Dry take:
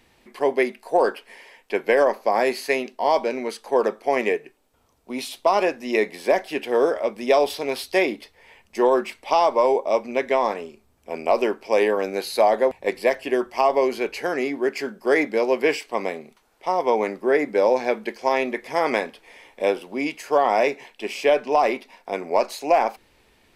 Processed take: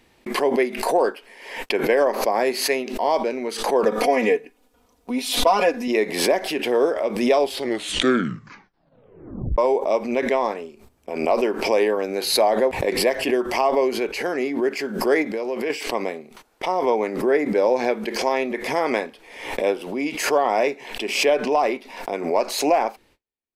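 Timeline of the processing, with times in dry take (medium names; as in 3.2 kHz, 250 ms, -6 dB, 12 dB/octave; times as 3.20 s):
3.85–5.88 s: comb 4.1 ms, depth 92%
7.39 s: tape stop 2.19 s
15.22–15.70 s: compression 3:1, threshold -24 dBFS
whole clip: gate -52 dBFS, range -38 dB; peaking EQ 330 Hz +3 dB 1.3 oct; swell ahead of each attack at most 71 dB/s; trim -2 dB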